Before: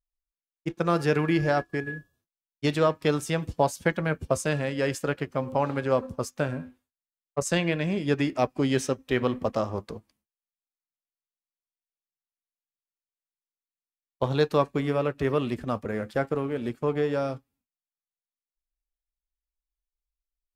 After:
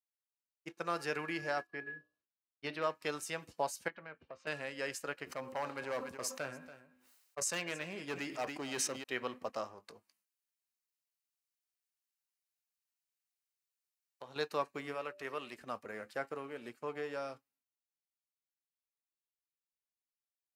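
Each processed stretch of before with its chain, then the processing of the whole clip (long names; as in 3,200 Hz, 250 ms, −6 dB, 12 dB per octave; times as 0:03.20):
0:01.67–0:02.84: moving average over 6 samples + mains-hum notches 60/120/180/240/300/360/420/480/540/600 Hz + gain into a clipping stage and back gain 15 dB
0:03.88–0:04.47: low-pass filter 3,500 Hz 24 dB per octave + downward compressor 2 to 1, threshold −36 dBFS + tube saturation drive 18 dB, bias 0.4
0:05.24–0:09.04: hard clipping −20 dBFS + single-tap delay 284 ms −16.5 dB + level that may fall only so fast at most 51 dB per second
0:09.67–0:14.36: downward compressor 2.5 to 1, threshold −36 dBFS + double-tracking delay 20 ms −14 dB + one half of a high-frequency compander encoder only
0:14.94–0:15.61: low-shelf EQ 350 Hz −7.5 dB + hum removal 194.6 Hz, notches 3
whole clip: high-pass filter 1,100 Hz 6 dB per octave; notch filter 3,400 Hz, Q 9.2; level −6 dB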